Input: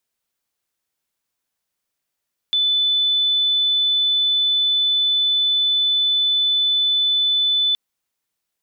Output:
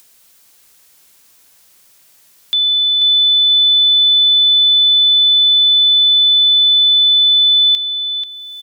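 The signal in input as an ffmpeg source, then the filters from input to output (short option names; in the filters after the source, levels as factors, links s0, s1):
-f lavfi -i "sine=f=3500:d=5.22:r=44100,volume=3.06dB"
-filter_complex "[0:a]highshelf=f=3200:g=8,acompressor=mode=upward:threshold=0.0316:ratio=2.5,asplit=2[s0][s1];[s1]adelay=486,lowpass=f=3400:p=1,volume=0.501,asplit=2[s2][s3];[s3]adelay=486,lowpass=f=3400:p=1,volume=0.41,asplit=2[s4][s5];[s5]adelay=486,lowpass=f=3400:p=1,volume=0.41,asplit=2[s6][s7];[s7]adelay=486,lowpass=f=3400:p=1,volume=0.41,asplit=2[s8][s9];[s9]adelay=486,lowpass=f=3400:p=1,volume=0.41[s10];[s2][s4][s6][s8][s10]amix=inputs=5:normalize=0[s11];[s0][s11]amix=inputs=2:normalize=0"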